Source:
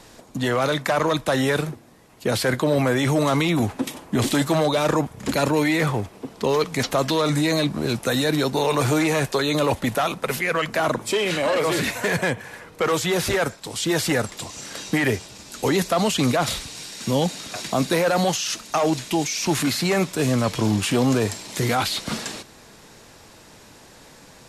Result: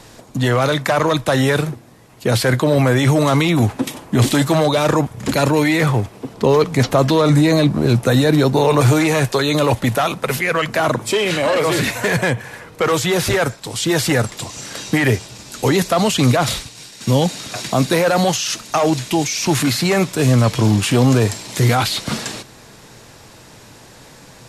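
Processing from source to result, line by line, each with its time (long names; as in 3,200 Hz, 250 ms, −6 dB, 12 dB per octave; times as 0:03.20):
0:06.34–0:08.81: tilt shelving filter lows +3.5 dB, about 1,300 Hz
0:16.37–0:17.25: downward expander −32 dBFS
whole clip: parametric band 120 Hz +7.5 dB 0.4 octaves; level +4.5 dB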